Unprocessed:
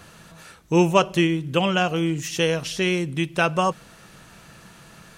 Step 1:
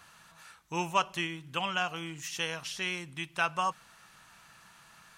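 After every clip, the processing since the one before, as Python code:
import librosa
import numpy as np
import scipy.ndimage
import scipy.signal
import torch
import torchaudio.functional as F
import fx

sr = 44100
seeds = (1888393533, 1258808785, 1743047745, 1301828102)

y = fx.low_shelf_res(x, sr, hz=670.0, db=-9.5, q=1.5)
y = y * librosa.db_to_amplitude(-8.0)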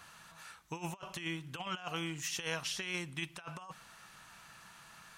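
y = fx.over_compress(x, sr, threshold_db=-36.0, ratio=-0.5)
y = y * librosa.db_to_amplitude(-3.0)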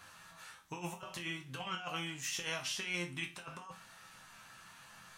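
y = fx.resonator_bank(x, sr, root=41, chord='minor', decay_s=0.29)
y = y * librosa.db_to_amplitude(11.5)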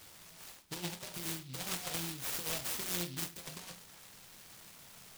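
y = fx.noise_mod_delay(x, sr, seeds[0], noise_hz=3500.0, depth_ms=0.26)
y = y * librosa.db_to_amplitude(1.5)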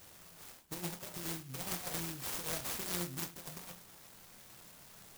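y = fx.clock_jitter(x, sr, seeds[1], jitter_ms=0.11)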